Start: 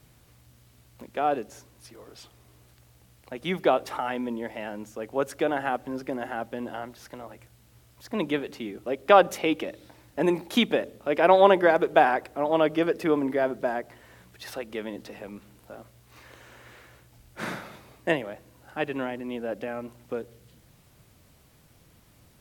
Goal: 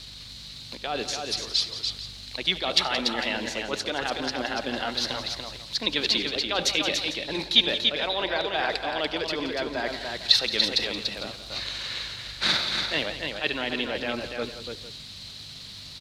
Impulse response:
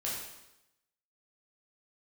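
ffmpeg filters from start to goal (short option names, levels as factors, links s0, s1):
-af "areverse,acompressor=threshold=0.0224:ratio=8,areverse,aeval=exprs='val(0)+0.00251*(sin(2*PI*50*n/s)+sin(2*PI*2*50*n/s)/2+sin(2*PI*3*50*n/s)/3+sin(2*PI*4*50*n/s)/4+sin(2*PI*5*50*n/s)/5)':c=same,crystalizer=i=8:c=0,atempo=1.4,lowpass=f=4100:t=q:w=6.1,aecho=1:1:73|92|174|289|451:0.112|0.106|0.224|0.562|0.168,volume=1.41"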